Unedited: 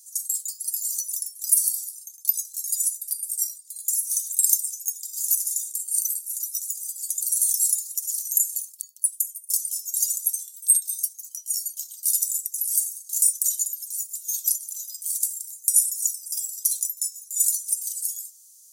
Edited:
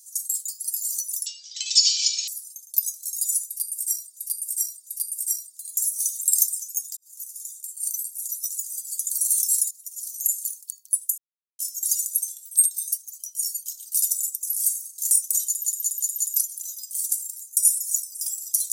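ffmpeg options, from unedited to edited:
ffmpeg -i in.wav -filter_complex "[0:a]asplit=14[link_01][link_02][link_03][link_04][link_05][link_06][link_07][link_08][link_09][link_10][link_11][link_12][link_13][link_14];[link_01]atrim=end=1.264[link_15];[link_02]atrim=start=1.26:end=1.79,asetpts=PTS-STARTPTS,asetrate=22932,aresample=44100,atrim=end_sample=44948,asetpts=PTS-STARTPTS[link_16];[link_03]atrim=start=1.786:end=3.682[link_17];[link_04]atrim=start=2.978:end=3.682[link_18];[link_05]atrim=start=2.978:end=5.08,asetpts=PTS-STARTPTS,afade=type=out:start_time=2.098:duration=0.004:curve=hsin[link_19];[link_06]atrim=start=5.08:end=7.82,asetpts=PTS-STARTPTS,afade=type=in:duration=1.44,afade=type=out:start_time=2.736:duration=0.004:curve=hsin:silence=0.158489[link_20];[link_07]atrim=start=7.82:end=9.29,asetpts=PTS-STARTPTS,afade=type=in:duration=0.79:silence=0.158489,afade=type=out:start_time=1.466:duration=0.004:curve=hsin[link_21];[link_08]atrim=start=9.29:end=9.7,asetpts=PTS-STARTPTS,volume=0[link_22];[link_09]atrim=start=9.7:end=13.752,asetpts=PTS-STARTPTS,afade=type=in:duration=0.004:curve=hsin[link_23];[link_10]atrim=start=13.568:end=13.752[link_24];[link_11]atrim=start=13.568:end=13.752[link_25];[link_12]atrim=start=13.568:end=13.752[link_26];[link_13]atrim=start=13.568:end=13.752[link_27];[link_14]atrim=start=14.468[link_28];[link_15][link_16]acrossfade=duration=0.004:curve1=hsin:curve2=hsin[link_29];[link_29][link_17]acrossfade=duration=0.004:curve1=hsin:curve2=hsin[link_30];[link_30][link_18]acrossfade=duration=0.004:curve1=hsin:curve2=hsin[link_31];[link_19][link_20][link_21][link_22][link_23]concat=n=5:v=0:a=1[link_32];[link_31][link_32]acrossfade=duration=0.004:curve1=hsin:curve2=hsin[link_33];[link_33][link_24]acrossfade=duration=0.004:curve1=hsin:curve2=hsin[link_34];[link_34][link_25]acrossfade=duration=0.004:curve1=hsin:curve2=hsin[link_35];[link_35][link_26]acrossfade=duration=0.004:curve1=hsin:curve2=hsin[link_36];[link_36][link_27]acrossfade=duration=0.004:curve1=hsin:curve2=hsin[link_37];[link_37][link_28]acrossfade=duration=0.004:curve1=hsin:curve2=hsin" out.wav

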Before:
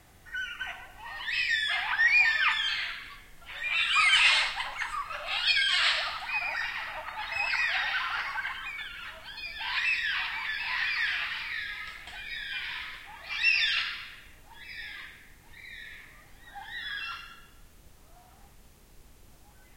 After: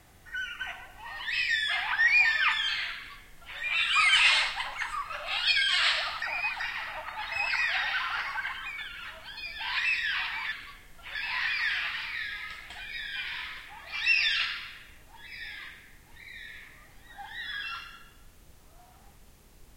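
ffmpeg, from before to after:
ffmpeg -i in.wav -filter_complex "[0:a]asplit=5[link_01][link_02][link_03][link_04][link_05];[link_01]atrim=end=6.222[link_06];[link_02]atrim=start=6.218:end=6.602,asetpts=PTS-STARTPTS,areverse[link_07];[link_03]atrim=start=6.598:end=10.522[link_08];[link_04]atrim=start=2.948:end=3.582[link_09];[link_05]atrim=start=10.518[link_10];[link_06][link_07]acrossfade=duration=0.004:curve1=hsin:curve2=hsin[link_11];[link_11][link_08]acrossfade=duration=0.004:curve1=hsin:curve2=hsin[link_12];[link_12][link_09]acrossfade=duration=0.004:curve1=hsin:curve2=hsin[link_13];[link_13][link_10]acrossfade=duration=0.004:curve1=hsin:curve2=hsin" out.wav

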